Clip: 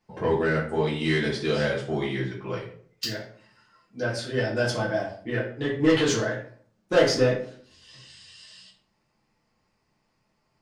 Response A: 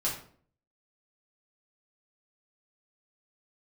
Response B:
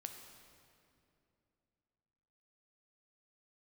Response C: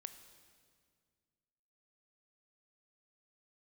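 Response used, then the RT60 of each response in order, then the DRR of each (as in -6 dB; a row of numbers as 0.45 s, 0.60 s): A; 0.50 s, 2.7 s, 2.0 s; -6.5 dB, 4.5 dB, 9.5 dB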